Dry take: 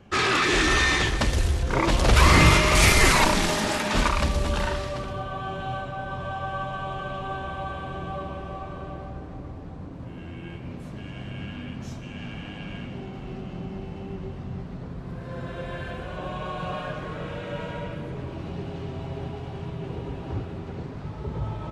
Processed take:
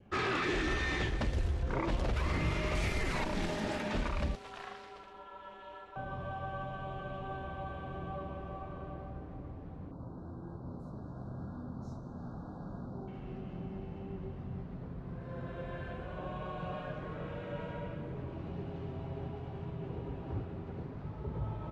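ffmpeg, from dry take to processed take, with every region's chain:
-filter_complex "[0:a]asettb=1/sr,asplit=3[a][b][c];[a]atrim=end=4.354[d];[b]atrim=start=4.35:end=5.96,asetpts=PTS-STARTPTS,afade=t=in:d=0.004:c=qsin,afade=t=out:st=1.606:d=0.004:c=qsin,highpass=f=1.3k:p=1,aeval=exprs='val(0)*sin(2*PI*180*n/s)':c=same[e];[c]atrim=start=5.956[f];[d][e]acrossfade=d=0.004:c1=hsin:c2=qsin[g];[g][f]acrossfade=d=0.004:c1=qsin:c2=hsin,asettb=1/sr,asplit=3[h][i][j];[h]atrim=end=9.914[k];[i]atrim=start=9.91:end=13.08,asetpts=PTS-STARTPTS,afade=t=in:d=0.004:c=qsin,afade=t=out:st=3.166:d=0.004:c=qsin,asuperstop=centerf=2400:order=12:qfactor=1,equalizer=f=920:t=o:w=1.1:g=4[l];[j]atrim=start=13.076[m];[k][l]acrossfade=d=0.004:c1=hsin:c2=qsin[n];[n][m]acrossfade=d=0.004:c1=qsin:c2=hsin,adynamicequalizer=threshold=0.0126:dfrequency=1100:dqfactor=1.9:tfrequency=1100:tqfactor=1.9:attack=5:release=100:ratio=0.375:range=3:mode=cutabove:tftype=bell,lowpass=f=1.7k:p=1,alimiter=limit=-16.5dB:level=0:latency=1:release=261,volume=-7dB"

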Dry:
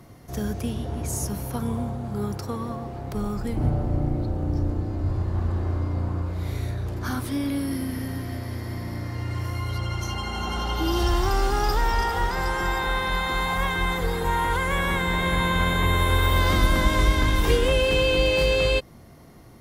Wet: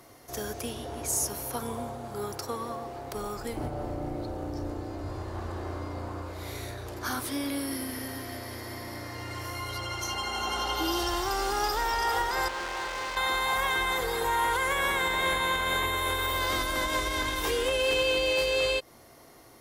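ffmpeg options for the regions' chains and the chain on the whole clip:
-filter_complex "[0:a]asettb=1/sr,asplit=3[a][b][c];[a]atrim=end=12.484[d];[b]atrim=start=12.48:end=13.17,asetpts=PTS-STARTPTS,afade=t=in:d=0.004:c=qsin,afade=t=out:st=0.686:d=0.004:c=qsin,lowpass=2.8k,volume=30.5dB,asoftclip=hard,volume=-30.5dB[e];[c]atrim=start=13.166[f];[d][e]acrossfade=d=0.004:c1=hsin:c2=qsin[g];[g][f]acrossfade=d=0.004:c1=qsin:c2=hsin,equalizer=f=190:w=4.5:g=-10,alimiter=limit=-15.5dB:level=0:latency=1:release=147,bass=f=250:g=-13,treble=f=4k:g=4"

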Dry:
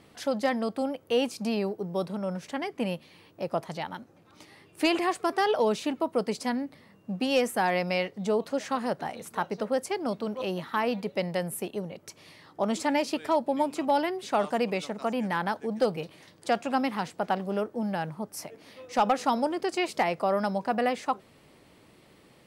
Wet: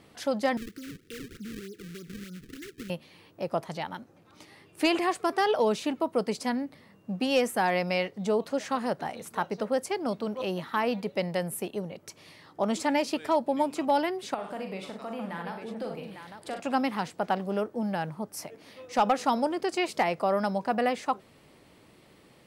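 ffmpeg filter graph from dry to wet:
-filter_complex "[0:a]asettb=1/sr,asplit=3[a][b][c];[a]atrim=end=0.574[d];[b]atrim=start=0.57:end=2.9,asetpts=PTS-STARTPTS,afade=t=in:d=0.004:c=qsin,afade=t=out:st=2.326:d=0.004:c=qsin,acompressor=threshold=-39dB:ratio=3:attack=3.2:release=140:knee=1:detection=peak,acrusher=samples=36:mix=1:aa=0.000001:lfo=1:lforange=57.6:lforate=3.3,asuperstop=centerf=780:order=8:qfactor=0.83[e];[c]atrim=start=2.896[f];[d][e]acrossfade=d=0.004:c1=hsin:c2=qsin[g];[g][f]acrossfade=d=0.004:c1=qsin:c2=hsin,asettb=1/sr,asplit=3[h][i][j];[h]atrim=end=14.344[k];[i]atrim=start=14.34:end=16.6,asetpts=PTS-STARTPTS,afade=t=in:d=0.004:c=qsin,afade=t=out:st=2.256:d=0.004:c=qsin,equalizer=f=6.2k:w=2.2:g=-8,acompressor=threshold=-41dB:ratio=2:attack=3.2:release=140:knee=1:detection=peak,aecho=1:1:41|63|98|851:0.447|0.335|0.266|0.422,atrim=end_sample=99666[l];[j]atrim=start=16.596[m];[k][l]acrossfade=d=0.004:c1=hsin:c2=qsin[n];[n][m]acrossfade=d=0.004:c1=qsin:c2=hsin"

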